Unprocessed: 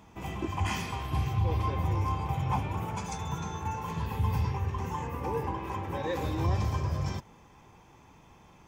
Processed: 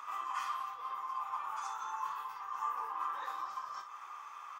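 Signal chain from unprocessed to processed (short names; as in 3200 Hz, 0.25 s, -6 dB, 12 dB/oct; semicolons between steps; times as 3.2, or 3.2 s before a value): dynamic EQ 2300 Hz, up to -6 dB, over -60 dBFS, Q 3.4; compressor 3:1, threshold -45 dBFS, peak gain reduction 16 dB; plain phase-vocoder stretch 0.53×; resonant high-pass 1200 Hz, resonance Q 15; early reflections 24 ms -6 dB, 57 ms -9 dB; gain +4.5 dB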